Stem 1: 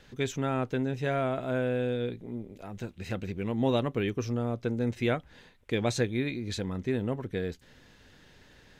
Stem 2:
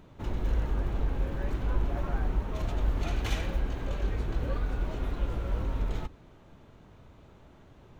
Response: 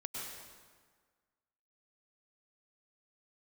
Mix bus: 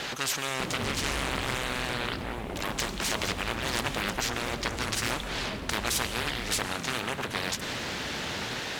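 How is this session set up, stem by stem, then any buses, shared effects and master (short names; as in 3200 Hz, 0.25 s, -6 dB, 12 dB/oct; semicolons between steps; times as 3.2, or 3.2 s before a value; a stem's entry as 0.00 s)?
+2.5 dB, 0.00 s, send -8.5 dB, spectral compressor 10:1
+3.0 dB, 0.60 s, no send, flange 0.86 Hz, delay 4.6 ms, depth 9.8 ms, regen +33%; small resonant body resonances 210/1100/2200/3400 Hz, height 6 dB; fast leveller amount 70%; auto duck -8 dB, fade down 1.80 s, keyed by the first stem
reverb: on, RT60 1.6 s, pre-delay 93 ms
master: HPF 95 Hz 6 dB/oct; Doppler distortion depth 0.77 ms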